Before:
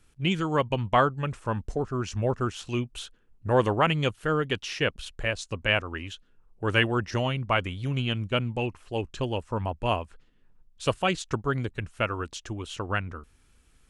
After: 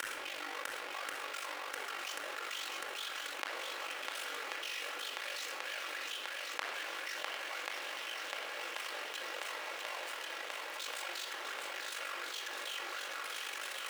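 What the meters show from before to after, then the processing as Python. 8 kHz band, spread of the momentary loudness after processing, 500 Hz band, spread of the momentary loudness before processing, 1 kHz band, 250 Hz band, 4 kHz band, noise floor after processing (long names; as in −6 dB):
−0.5 dB, 1 LU, −19.0 dB, 12 LU, −12.5 dB, −28.0 dB, −5.5 dB, −44 dBFS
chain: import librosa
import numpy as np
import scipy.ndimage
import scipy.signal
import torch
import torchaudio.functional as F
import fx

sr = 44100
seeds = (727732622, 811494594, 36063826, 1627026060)

y = np.sign(x) * np.sqrt(np.mean(np.square(x)))
y = scipy.signal.sosfilt(scipy.signal.butter(6, 390.0, 'highpass', fs=sr, output='sos'), y)
y = fx.peak_eq(y, sr, hz=2100.0, db=11.5, octaves=2.6)
y = y * np.sin(2.0 * np.pi * 24.0 * np.arange(len(y)) / sr)
y = fx.gate_flip(y, sr, shuts_db=-26.0, range_db=-33)
y = fx.echo_swing(y, sr, ms=1086, ratio=1.5, feedback_pct=67, wet_db=-7.0)
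y = fx.room_shoebox(y, sr, seeds[0], volume_m3=2300.0, walls='furnished', distance_m=2.3)
y = fx.env_flatten(y, sr, amount_pct=70)
y = y * 10.0 ** (3.5 / 20.0)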